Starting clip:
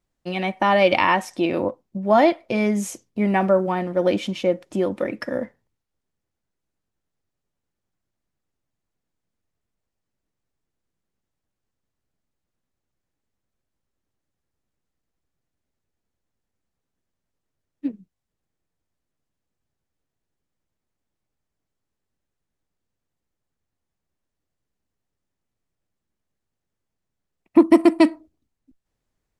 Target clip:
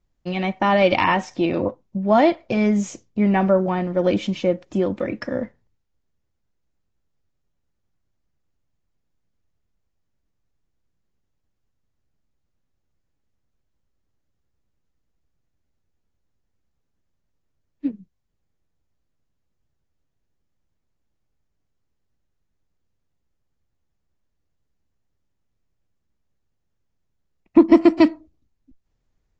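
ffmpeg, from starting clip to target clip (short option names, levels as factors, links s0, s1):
-af "lowshelf=f=160:g=11,aresample=16000,aresample=44100,volume=0.891" -ar 32000 -c:a aac -b:a 32k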